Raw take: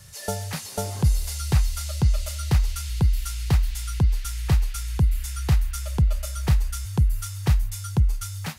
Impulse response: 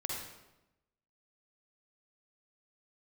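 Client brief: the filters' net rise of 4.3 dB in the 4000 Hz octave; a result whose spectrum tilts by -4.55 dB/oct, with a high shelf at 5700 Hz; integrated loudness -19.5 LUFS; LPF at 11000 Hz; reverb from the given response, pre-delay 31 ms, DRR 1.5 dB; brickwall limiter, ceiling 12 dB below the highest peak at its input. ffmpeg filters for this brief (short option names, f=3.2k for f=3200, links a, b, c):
-filter_complex "[0:a]lowpass=11k,equalizer=f=4k:t=o:g=8.5,highshelf=f=5.7k:g=-7.5,alimiter=limit=-21.5dB:level=0:latency=1,asplit=2[a][b];[1:a]atrim=start_sample=2205,adelay=31[c];[b][c]afir=irnorm=-1:irlink=0,volume=-4dB[d];[a][d]amix=inputs=2:normalize=0,volume=7.5dB"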